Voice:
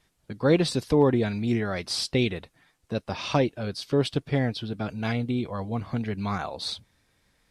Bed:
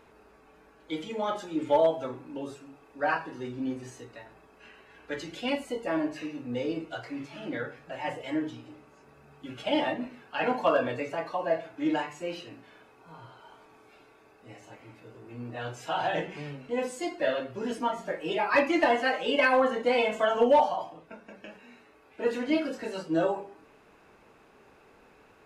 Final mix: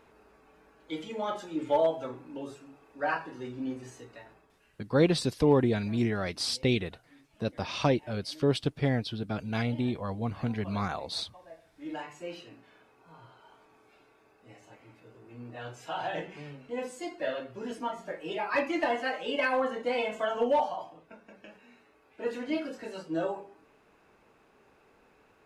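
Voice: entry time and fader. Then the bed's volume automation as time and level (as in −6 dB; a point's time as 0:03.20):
4.50 s, −2.5 dB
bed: 0:04.30 −2.5 dB
0:04.90 −22.5 dB
0:11.57 −22.5 dB
0:12.09 −5 dB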